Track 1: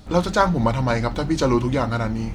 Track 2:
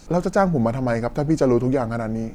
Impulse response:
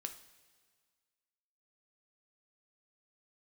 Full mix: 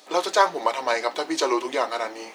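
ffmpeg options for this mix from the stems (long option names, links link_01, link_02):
-filter_complex "[0:a]highpass=frequency=710:poles=1,bandreject=frequency=1400:width=9.5,volume=3dB[link_01];[1:a]flanger=delay=17.5:depth=3.9:speed=2.3,volume=-1,volume=-7dB[link_02];[link_01][link_02]amix=inputs=2:normalize=0,highpass=frequency=340:width=0.5412,highpass=frequency=340:width=1.3066"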